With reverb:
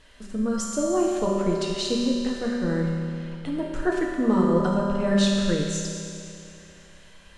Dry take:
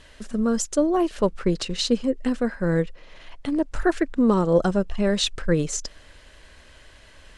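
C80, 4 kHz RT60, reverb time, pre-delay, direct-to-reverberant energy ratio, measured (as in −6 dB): 1.0 dB, 2.5 s, 2.6 s, 5 ms, −3.0 dB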